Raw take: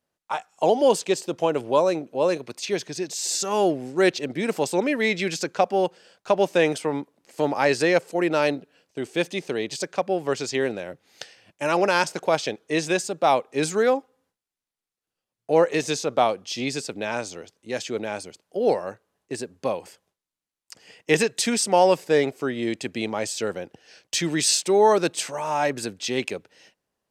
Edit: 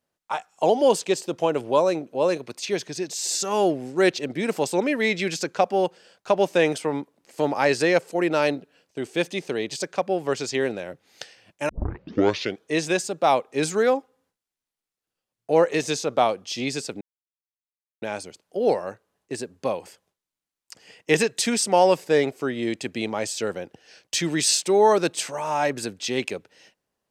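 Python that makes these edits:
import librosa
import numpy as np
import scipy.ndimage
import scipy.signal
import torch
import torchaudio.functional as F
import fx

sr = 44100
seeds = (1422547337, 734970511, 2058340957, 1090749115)

y = fx.edit(x, sr, fx.tape_start(start_s=11.69, length_s=0.92),
    fx.silence(start_s=17.01, length_s=1.01), tone=tone)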